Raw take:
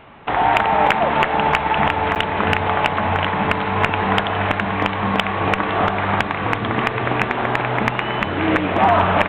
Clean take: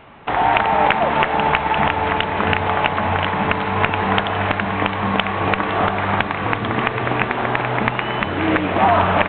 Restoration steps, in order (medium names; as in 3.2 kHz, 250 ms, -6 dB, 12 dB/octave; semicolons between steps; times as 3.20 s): clip repair -5 dBFS; interpolate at 2.15 s, 8.7 ms